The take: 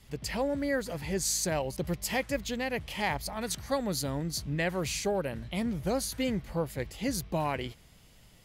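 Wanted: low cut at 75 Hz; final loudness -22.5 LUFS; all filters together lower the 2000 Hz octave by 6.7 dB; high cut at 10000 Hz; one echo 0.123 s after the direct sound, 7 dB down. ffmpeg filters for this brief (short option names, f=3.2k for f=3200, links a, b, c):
-af "highpass=75,lowpass=10k,equalizer=f=2k:t=o:g=-8,aecho=1:1:123:0.447,volume=10dB"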